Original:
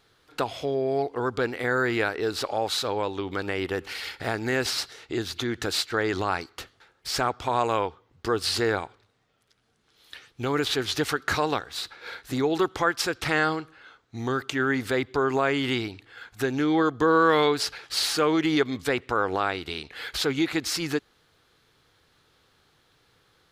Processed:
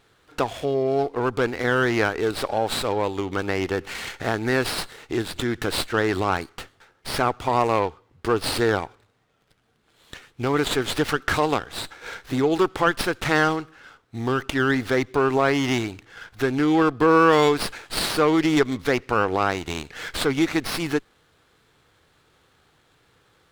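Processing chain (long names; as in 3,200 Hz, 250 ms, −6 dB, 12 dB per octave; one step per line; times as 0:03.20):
windowed peak hold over 5 samples
level +3.5 dB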